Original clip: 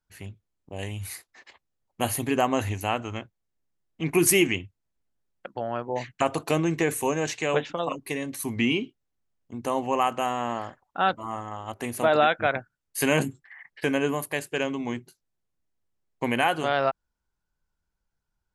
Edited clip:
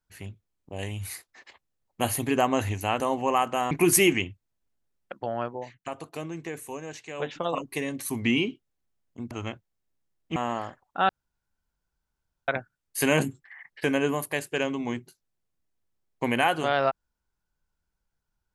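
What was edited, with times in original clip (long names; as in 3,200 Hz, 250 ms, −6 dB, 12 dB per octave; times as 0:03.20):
0:03.00–0:04.05: swap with 0:09.65–0:10.36
0:05.78–0:07.73: duck −11.5 dB, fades 0.22 s
0:11.09–0:12.48: fill with room tone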